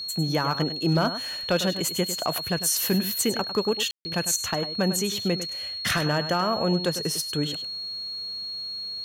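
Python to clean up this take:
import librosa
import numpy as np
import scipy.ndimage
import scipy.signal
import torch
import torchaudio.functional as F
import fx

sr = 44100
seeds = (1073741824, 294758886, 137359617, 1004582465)

y = fx.fix_declip(x, sr, threshold_db=-14.5)
y = fx.notch(y, sr, hz=4300.0, q=30.0)
y = fx.fix_ambience(y, sr, seeds[0], print_start_s=8.47, print_end_s=8.97, start_s=3.91, end_s=4.05)
y = fx.fix_echo_inverse(y, sr, delay_ms=101, level_db=-11.5)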